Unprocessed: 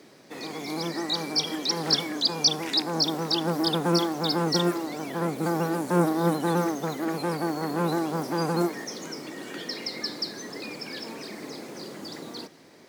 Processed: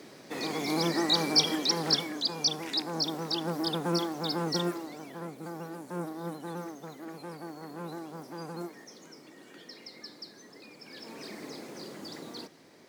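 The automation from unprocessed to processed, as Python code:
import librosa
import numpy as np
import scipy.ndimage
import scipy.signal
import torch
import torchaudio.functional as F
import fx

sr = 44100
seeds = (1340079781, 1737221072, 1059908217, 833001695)

y = fx.gain(x, sr, db=fx.line((1.39, 2.5), (2.23, -6.0), (4.61, -6.0), (5.41, -14.0), (10.75, -14.0), (11.26, -4.0)))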